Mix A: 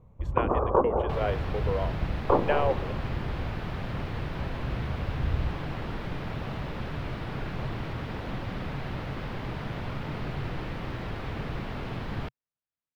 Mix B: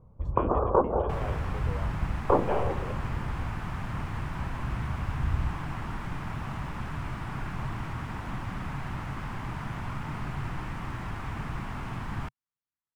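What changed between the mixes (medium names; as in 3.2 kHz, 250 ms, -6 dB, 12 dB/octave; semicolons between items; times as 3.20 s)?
speech -11.0 dB; second sound: add graphic EQ 500/1000/4000/8000 Hz -12/+6/-9/+10 dB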